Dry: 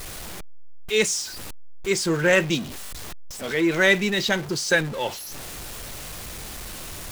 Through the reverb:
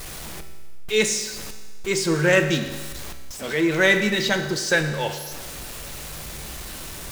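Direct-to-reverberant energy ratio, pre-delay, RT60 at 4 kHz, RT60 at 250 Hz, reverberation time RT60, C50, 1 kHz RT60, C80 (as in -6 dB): 6.5 dB, 5 ms, 1.4 s, 1.4 s, 1.4 s, 9.0 dB, 1.4 s, 10.5 dB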